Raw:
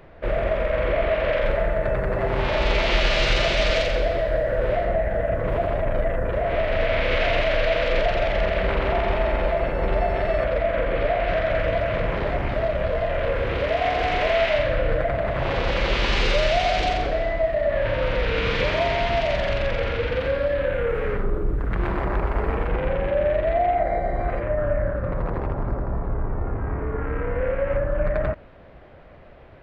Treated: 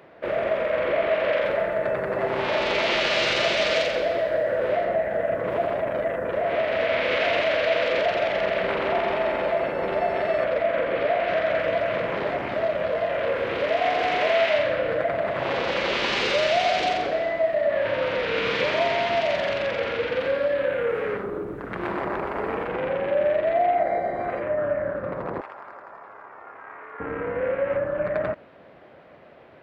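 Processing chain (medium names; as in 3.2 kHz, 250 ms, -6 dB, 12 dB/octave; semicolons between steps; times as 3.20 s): high-pass 220 Hz 12 dB/octave, from 25.41 s 1.1 kHz, from 27.00 s 190 Hz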